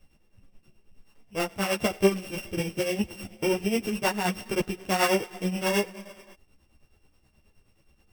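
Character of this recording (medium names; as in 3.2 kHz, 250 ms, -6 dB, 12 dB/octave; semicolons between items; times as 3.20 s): a buzz of ramps at a fixed pitch in blocks of 16 samples; tremolo triangle 9.4 Hz, depth 75%; a shimmering, thickened sound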